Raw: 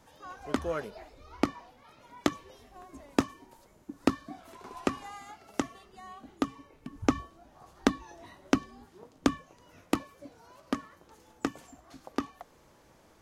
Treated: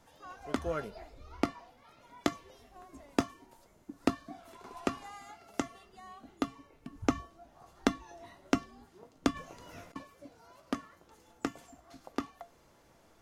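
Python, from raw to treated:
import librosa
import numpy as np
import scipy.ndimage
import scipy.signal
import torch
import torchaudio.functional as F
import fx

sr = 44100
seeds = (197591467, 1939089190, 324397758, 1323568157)

y = fx.low_shelf(x, sr, hz=230.0, db=6.5, at=(0.66, 1.41))
y = fx.over_compress(y, sr, threshold_db=-47.0, ratio=-1.0, at=(9.31, 9.96))
y = fx.comb_fb(y, sr, f0_hz=690.0, decay_s=0.19, harmonics='all', damping=0.0, mix_pct=70)
y = F.gain(torch.from_numpy(y), 6.5).numpy()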